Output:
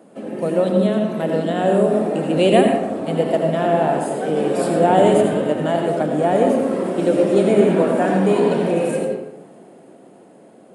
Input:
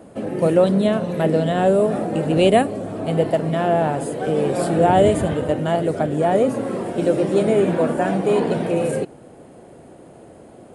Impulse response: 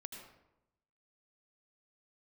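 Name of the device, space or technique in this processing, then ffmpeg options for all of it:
far laptop microphone: -filter_complex "[1:a]atrim=start_sample=2205[s0];[0:a][s0]afir=irnorm=-1:irlink=0,highpass=f=160:w=0.5412,highpass=f=160:w=1.3066,dynaudnorm=f=250:g=13:m=1.88,volume=1.19"

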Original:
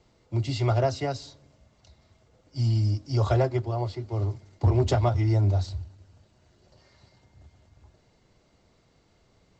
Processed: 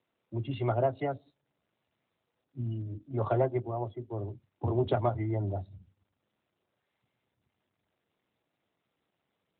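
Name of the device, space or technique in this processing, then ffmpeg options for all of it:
mobile call with aggressive noise cancelling: -filter_complex "[0:a]asettb=1/sr,asplit=3[s0][s1][s2];[s0]atrim=end=2.824[s3];[s1]atrim=start=2.82:end=3.29,asetpts=PTS-STARTPTS,afade=t=in:d=0.004:c=qsin,afade=t=out:st=0.466:d=0.004:c=qsin,equalizer=f=5300:t=o:w=0.27:g=-6[s4];[s2]atrim=start=3.286[s5];[s3][s4]acrossfade=d=0.004:c1=hsin:c2=qsin[s6];[s6][s5]acrossfade=d=0.004:c1=qsin:c2=hsin,highpass=150,afftdn=nr=25:nf=-39,volume=0.794" -ar 8000 -c:a libopencore_amrnb -b:a 12200

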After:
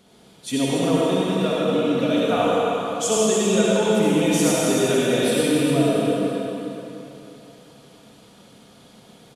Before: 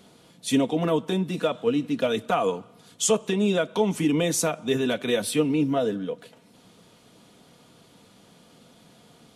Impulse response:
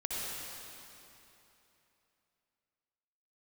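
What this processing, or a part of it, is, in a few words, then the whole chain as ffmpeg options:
cave: -filter_complex "[0:a]aecho=1:1:290:0.335[s0];[1:a]atrim=start_sample=2205[s1];[s0][s1]afir=irnorm=-1:irlink=0"

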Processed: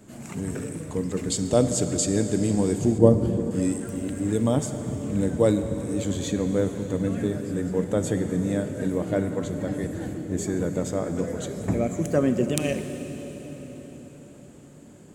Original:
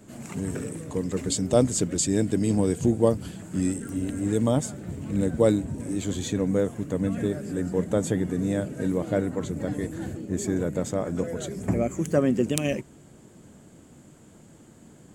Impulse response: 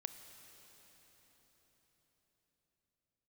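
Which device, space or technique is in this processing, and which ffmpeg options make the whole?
cathedral: -filter_complex "[1:a]atrim=start_sample=2205[s0];[0:a][s0]afir=irnorm=-1:irlink=0,asettb=1/sr,asplit=3[s1][s2][s3];[s1]atrim=end=2.984[s4];[s2]atrim=start=2.98:end=3.51,asetpts=PTS-STARTPTS,afade=t=in:d=0.004:c=qsin,afade=t=out:st=0.526:d=0.004:c=qsin,tiltshelf=f=880:g=7[s5];[s3]atrim=start=3.506[s6];[s4][s5]acrossfade=d=0.004:c1=hsin:c2=qsin[s7];[s7][s6]acrossfade=d=0.004:c1=qsin:c2=hsin,volume=1.5"

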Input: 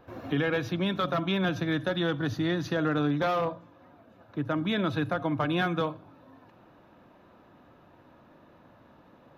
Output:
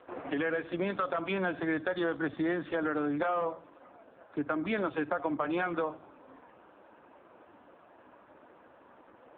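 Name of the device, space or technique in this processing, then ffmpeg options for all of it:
voicemail: -filter_complex "[0:a]asettb=1/sr,asplit=3[s0][s1][s2];[s0]atrim=end=4.454[s3];[s1]atrim=start=4.45:end=5.87,asetpts=PTS-STARTPTS,afade=t=in:d=0.004:c=qsin,afade=t=out:st=1.416:d=0.004:c=qsin,lowpass=5700[s4];[s2]atrim=start=5.866[s5];[s3][s4]acrossfade=d=0.004:c1=hsin:c2=qsin[s6];[s6][s5]acrossfade=d=0.004:c1=qsin:c2=hsin,highpass=330,lowpass=3000,acompressor=threshold=0.0282:ratio=8,volume=1.78" -ar 8000 -c:a libopencore_amrnb -b:a 5150

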